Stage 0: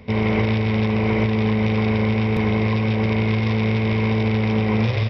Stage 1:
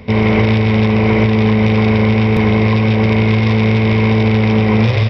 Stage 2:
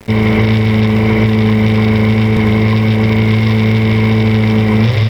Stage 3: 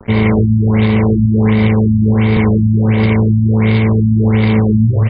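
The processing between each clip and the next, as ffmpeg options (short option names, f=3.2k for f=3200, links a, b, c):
-af "acontrast=46,volume=2dB"
-af "equalizer=f=670:t=o:w=1.5:g=-4.5,bandreject=f=2.5k:w=11,aeval=exprs='val(0)*gte(abs(val(0)),0.0237)':c=same,volume=2dB"
-af "afftfilt=real='re*lt(b*sr/1024,260*pow(5000/260,0.5+0.5*sin(2*PI*1.4*pts/sr)))':imag='im*lt(b*sr/1024,260*pow(5000/260,0.5+0.5*sin(2*PI*1.4*pts/sr)))':win_size=1024:overlap=0.75"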